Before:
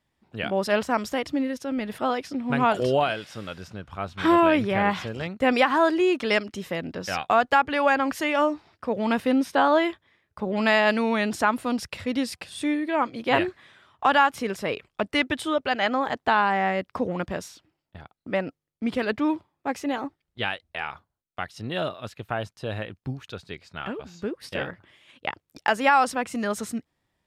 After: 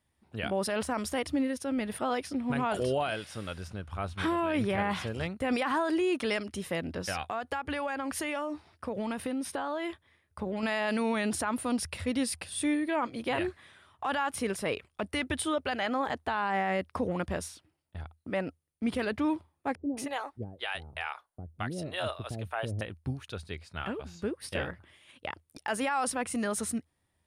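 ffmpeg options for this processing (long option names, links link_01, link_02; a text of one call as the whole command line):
ffmpeg -i in.wav -filter_complex "[0:a]asettb=1/sr,asplit=3[link_01][link_02][link_03];[link_01]atrim=end=7.254[link_04];[link_02]atrim=start=7.25:end=10.63,asetpts=PTS-STARTPTS,afade=type=in:duration=0.004:curve=qsin,afade=type=out:start_time=3.376:duration=0.004:curve=qsin,acompressor=threshold=-26dB:ratio=10:attack=3.2:release=140:knee=1:detection=peak[link_05];[link_03]atrim=start=10.626[link_06];[link_04][link_05]acrossfade=duration=0.004:curve1=hsin:curve2=qsin[link_07];[link_07][link_06]acrossfade=duration=0.004:curve1=qsin:curve2=hsin,asettb=1/sr,asplit=3[link_08][link_09][link_10];[link_08]atrim=end=19.754[link_11];[link_09]atrim=start=19.75:end=22.81,asetpts=PTS-STARTPTS,afade=type=in:duration=0.004:curve=qsin,afade=type=out:start_time=3.056:duration=0.004:curve=qsin,acrossover=split=460[link_12][link_13];[link_13]adelay=220[link_14];[link_12][link_14]amix=inputs=2:normalize=0,atrim=end_sample=134946[link_15];[link_10]atrim=start=22.806[link_16];[link_11][link_15]acrossfade=duration=0.004:curve1=hsin:curve2=qsin[link_17];[link_17][link_16]acrossfade=duration=0.004:curve1=qsin:curve2=hsin,equalizer=frequency=9500:width_type=o:width=0.22:gain=15,alimiter=limit=-18dB:level=0:latency=1:release=16,equalizer=frequency=80:width_type=o:width=0.33:gain=13,volume=-3dB" out.wav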